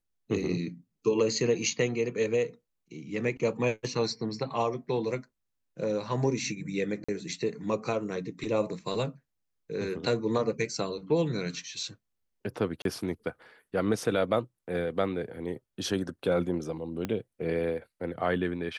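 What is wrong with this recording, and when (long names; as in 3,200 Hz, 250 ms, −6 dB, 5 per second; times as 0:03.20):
0:07.04–0:07.08: drop-out 45 ms
0:12.82–0:12.85: drop-out 32 ms
0:17.05: click −18 dBFS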